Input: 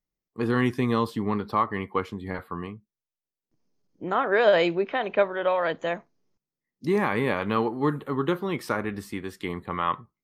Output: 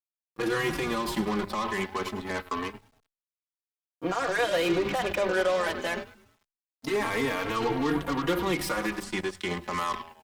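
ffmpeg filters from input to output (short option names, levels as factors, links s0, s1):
-filter_complex "[0:a]acrossover=split=460|3000[s0][s1][s2];[s1]acompressor=threshold=0.0708:ratio=6[s3];[s0][s3][s2]amix=inputs=3:normalize=0,asplit=2[s4][s5];[s5]asoftclip=type=tanh:threshold=0.0335,volume=0.316[s6];[s4][s6]amix=inputs=2:normalize=0,highpass=210,highshelf=f=2000:g=4.5,bandreject=f=50:t=h:w=6,bandreject=f=100:t=h:w=6,bandreject=f=150:t=h:w=6,bandreject=f=200:t=h:w=6,bandreject=f=250:t=h:w=6,bandreject=f=300:t=h:w=6,bandreject=f=350:t=h:w=6,bandreject=f=400:t=h:w=6,bandreject=f=450:t=h:w=6,asplit=2[s7][s8];[s8]asplit=7[s9][s10][s11][s12][s13][s14][s15];[s9]adelay=102,afreqshift=-100,volume=0.188[s16];[s10]adelay=204,afreqshift=-200,volume=0.116[s17];[s11]adelay=306,afreqshift=-300,volume=0.0724[s18];[s12]adelay=408,afreqshift=-400,volume=0.0447[s19];[s13]adelay=510,afreqshift=-500,volume=0.0279[s20];[s14]adelay=612,afreqshift=-600,volume=0.0172[s21];[s15]adelay=714,afreqshift=-700,volume=0.0107[s22];[s16][s17][s18][s19][s20][s21][s22]amix=inputs=7:normalize=0[s23];[s7][s23]amix=inputs=2:normalize=0,alimiter=limit=0.0794:level=0:latency=1:release=43,aeval=exprs='0.0794*(cos(1*acos(clip(val(0)/0.0794,-1,1)))-cos(1*PI/2))+0.01*(cos(7*acos(clip(val(0)/0.0794,-1,1)))-cos(7*PI/2))+0.000891*(cos(8*acos(clip(val(0)/0.0794,-1,1)))-cos(8*PI/2))':c=same,asettb=1/sr,asplit=3[s24][s25][s26];[s24]atrim=end=9.034[s27];[s25]atrim=start=9.03:end=9.63,asetpts=PTS-STARTPTS,afade=t=in:d=0.004:c=qsin,afade=t=out:st=0.596:d=0.004:c=qsin,lowpass=f=9200:w=0.5412,lowpass=f=9200:w=1.3066[s28];[s26]atrim=start=9.626[s29];[s27][s28]acrossfade=d=0.004:c1=hsin:c2=qsin[s30];[s30][s29]acrossfade=d=0.004:c1=qsin:c2=hsin,acrusher=bits=10:mix=0:aa=0.000001,asplit=2[s31][s32];[s32]adelay=3.8,afreqshift=0.25[s33];[s31][s33]amix=inputs=2:normalize=1,volume=2"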